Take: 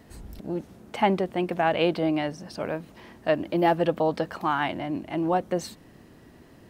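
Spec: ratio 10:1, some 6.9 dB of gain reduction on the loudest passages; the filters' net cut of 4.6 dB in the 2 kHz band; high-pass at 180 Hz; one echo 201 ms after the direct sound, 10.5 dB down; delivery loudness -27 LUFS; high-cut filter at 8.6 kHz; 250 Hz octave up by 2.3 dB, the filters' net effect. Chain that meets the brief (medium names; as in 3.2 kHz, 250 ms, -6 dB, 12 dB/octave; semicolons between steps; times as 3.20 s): high-pass 180 Hz; low-pass 8.6 kHz; peaking EQ 250 Hz +5 dB; peaking EQ 2 kHz -6 dB; compression 10:1, threshold -23 dBFS; delay 201 ms -10.5 dB; trim +3 dB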